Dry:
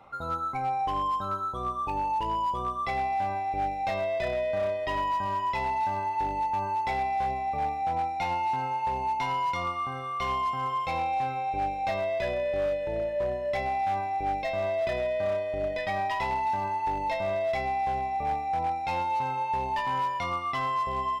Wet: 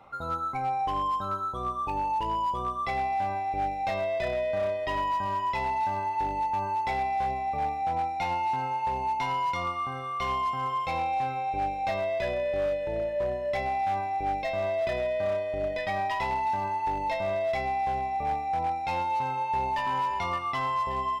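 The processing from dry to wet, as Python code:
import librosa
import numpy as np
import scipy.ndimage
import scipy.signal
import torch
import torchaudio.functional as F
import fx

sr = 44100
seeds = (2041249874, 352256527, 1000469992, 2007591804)

y = fx.echo_throw(x, sr, start_s=18.98, length_s=0.83, ms=570, feedback_pct=40, wet_db=-10.0)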